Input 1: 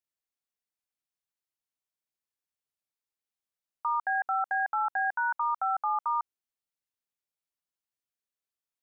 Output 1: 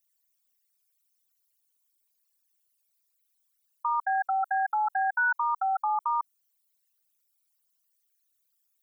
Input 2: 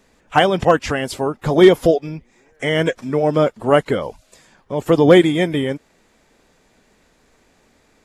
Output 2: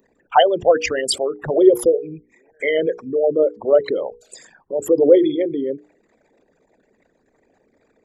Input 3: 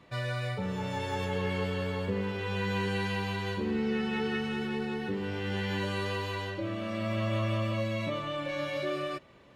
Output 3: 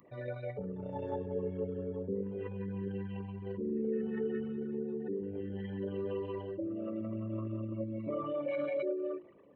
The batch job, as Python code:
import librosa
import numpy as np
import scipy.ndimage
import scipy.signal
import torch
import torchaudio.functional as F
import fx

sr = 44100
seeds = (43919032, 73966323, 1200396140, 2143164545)

y = fx.envelope_sharpen(x, sr, power=3.0)
y = fx.riaa(y, sr, side='recording')
y = fx.hum_notches(y, sr, base_hz=60, count=8)
y = y * 10.0 ** (2.5 / 20.0)